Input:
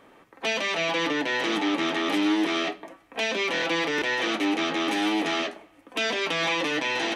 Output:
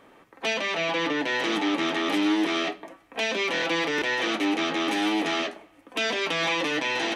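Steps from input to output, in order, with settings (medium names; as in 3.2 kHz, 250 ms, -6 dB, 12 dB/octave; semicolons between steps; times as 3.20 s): 0.54–1.22 s: treble shelf 6.7 kHz -8.5 dB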